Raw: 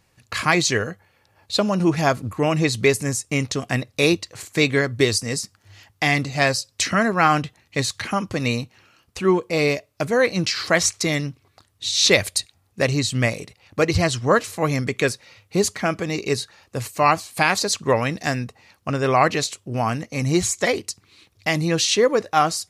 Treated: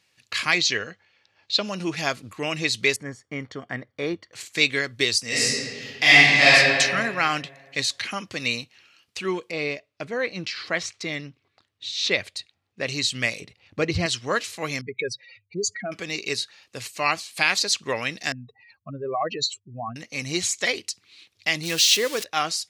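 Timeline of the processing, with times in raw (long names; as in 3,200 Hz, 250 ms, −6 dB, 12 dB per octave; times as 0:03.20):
0:00.58–0:01.64: low-pass filter 6,300 Hz 24 dB per octave
0:02.96–0:04.33: Savitzky-Golay smoothing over 41 samples
0:05.27–0:06.54: thrown reverb, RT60 2 s, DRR −10 dB
0:09.51–0:12.87: low-pass filter 1,400 Hz 6 dB per octave
0:13.41–0:14.06: spectral tilt −3 dB per octave
0:14.81–0:15.92: expanding power law on the bin magnitudes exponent 2.7
0:18.32–0:19.96: expanding power law on the bin magnitudes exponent 2.9
0:21.63–0:22.24: spike at every zero crossing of −16.5 dBFS
whole clip: meter weighting curve D; level −8.5 dB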